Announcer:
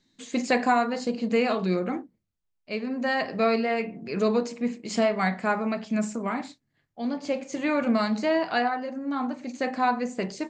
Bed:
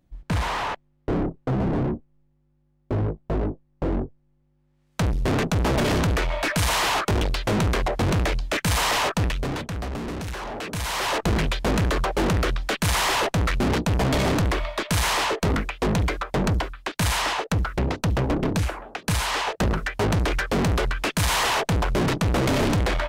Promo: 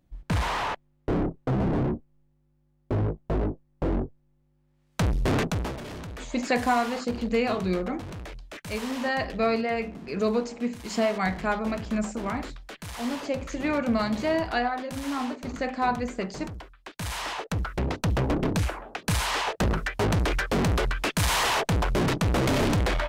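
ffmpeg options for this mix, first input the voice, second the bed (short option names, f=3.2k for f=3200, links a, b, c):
-filter_complex "[0:a]adelay=6000,volume=-1.5dB[a];[1:a]volume=13dB,afade=t=out:st=5.37:d=0.41:silence=0.177828,afade=t=in:st=16.71:d=1.43:silence=0.188365[b];[a][b]amix=inputs=2:normalize=0"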